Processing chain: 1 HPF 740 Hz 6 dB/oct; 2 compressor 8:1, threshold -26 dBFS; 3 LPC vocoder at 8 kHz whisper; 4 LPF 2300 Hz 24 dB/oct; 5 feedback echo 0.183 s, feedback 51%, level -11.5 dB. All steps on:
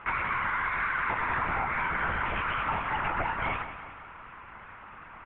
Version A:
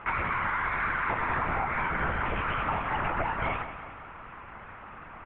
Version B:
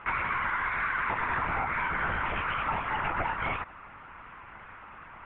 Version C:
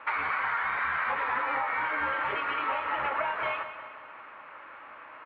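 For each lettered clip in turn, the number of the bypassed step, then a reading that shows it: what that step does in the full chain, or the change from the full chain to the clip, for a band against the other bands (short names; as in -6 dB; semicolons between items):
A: 1, 4 kHz band -5.0 dB; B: 5, echo-to-direct -10.0 dB to none; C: 3, 125 Hz band -14.5 dB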